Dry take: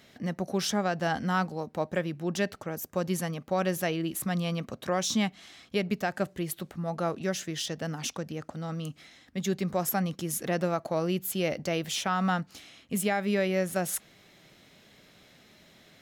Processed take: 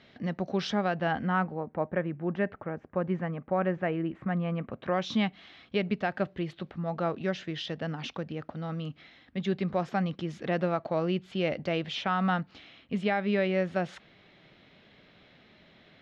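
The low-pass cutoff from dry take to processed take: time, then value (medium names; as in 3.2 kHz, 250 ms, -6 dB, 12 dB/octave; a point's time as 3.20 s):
low-pass 24 dB/octave
0.71 s 4.2 kHz
1.61 s 2.1 kHz
4.53 s 2.1 kHz
5.12 s 3.8 kHz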